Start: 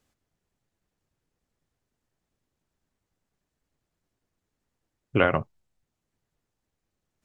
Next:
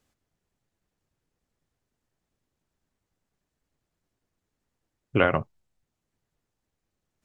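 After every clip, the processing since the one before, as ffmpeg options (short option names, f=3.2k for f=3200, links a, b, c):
-af anull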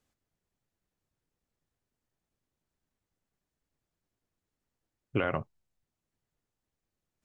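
-af "alimiter=limit=-10dB:level=0:latency=1:release=37,volume=-5.5dB"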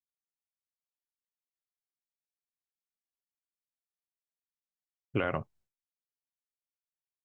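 -af "agate=range=-33dB:threshold=-60dB:ratio=3:detection=peak,volume=-1dB"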